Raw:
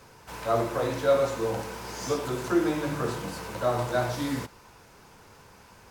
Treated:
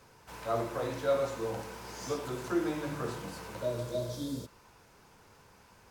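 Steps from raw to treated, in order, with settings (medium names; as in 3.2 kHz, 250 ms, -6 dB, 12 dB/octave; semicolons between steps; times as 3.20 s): spectral replace 3.64–4.48 s, 680–3100 Hz both; trim -6.5 dB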